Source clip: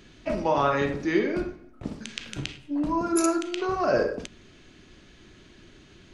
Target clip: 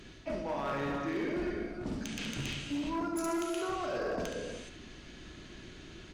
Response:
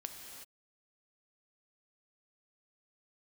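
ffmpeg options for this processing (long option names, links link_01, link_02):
-filter_complex "[0:a]aecho=1:1:71:0.224,areverse,acompressor=threshold=-32dB:ratio=16,areverse[link_01];[1:a]atrim=start_sample=2205,asetrate=39249,aresample=44100[link_02];[link_01][link_02]afir=irnorm=-1:irlink=0,asoftclip=type=hard:threshold=-33.5dB,volume=4dB"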